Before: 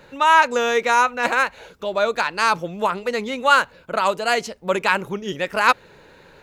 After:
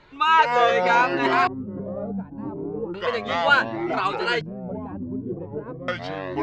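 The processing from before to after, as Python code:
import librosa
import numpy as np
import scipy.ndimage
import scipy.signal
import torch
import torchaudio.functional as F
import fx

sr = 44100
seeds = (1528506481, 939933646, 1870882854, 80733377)

y = fx.echo_pitch(x, sr, ms=111, semitones=-5, count=3, db_per_echo=-3.0)
y = fx.filter_lfo_lowpass(y, sr, shape='square', hz=0.34, low_hz=270.0, high_hz=3900.0, q=1.1)
y = fx.comb_cascade(y, sr, direction='rising', hz=0.78)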